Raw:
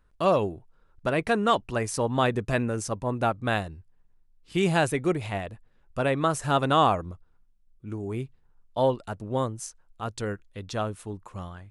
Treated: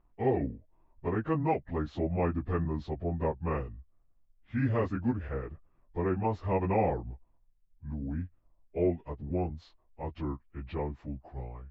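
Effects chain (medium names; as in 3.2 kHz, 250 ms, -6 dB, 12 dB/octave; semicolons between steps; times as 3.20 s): frequency-domain pitch shifter -6.5 st; in parallel at -2.5 dB: compression, threshold -38 dBFS, peak gain reduction 18.5 dB; on the sum: distance through air 480 m; trim -4 dB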